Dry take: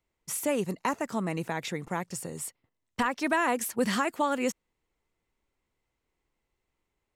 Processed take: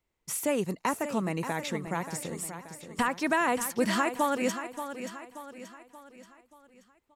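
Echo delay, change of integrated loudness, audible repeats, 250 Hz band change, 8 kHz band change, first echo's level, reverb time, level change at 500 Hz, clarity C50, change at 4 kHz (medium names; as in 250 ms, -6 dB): 580 ms, 0.0 dB, 4, +0.5 dB, +0.5 dB, -10.0 dB, no reverb, +0.5 dB, no reverb, +0.5 dB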